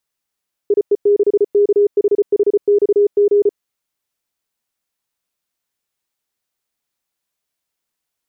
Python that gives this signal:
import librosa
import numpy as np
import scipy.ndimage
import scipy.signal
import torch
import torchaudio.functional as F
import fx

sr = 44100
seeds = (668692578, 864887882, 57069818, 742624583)

y = fx.morse(sr, text='IE6KHHXG', wpm=34, hz=409.0, level_db=-8.5)